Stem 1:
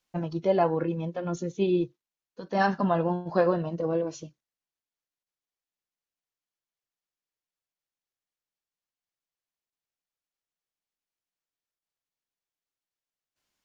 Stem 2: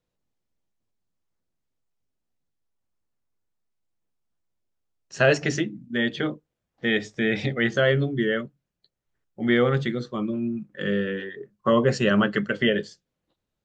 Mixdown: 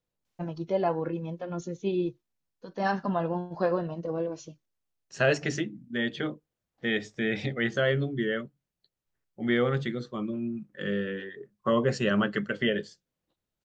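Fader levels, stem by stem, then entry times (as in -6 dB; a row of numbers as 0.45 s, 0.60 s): -3.5 dB, -5.0 dB; 0.25 s, 0.00 s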